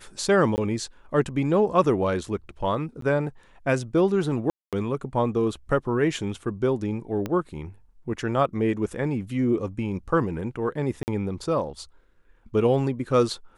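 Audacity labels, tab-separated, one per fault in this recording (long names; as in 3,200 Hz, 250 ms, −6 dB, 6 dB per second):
0.560000	0.580000	drop-out 19 ms
3.010000	3.020000	drop-out 13 ms
4.500000	4.730000	drop-out 227 ms
7.260000	7.260000	click −16 dBFS
11.030000	11.080000	drop-out 49 ms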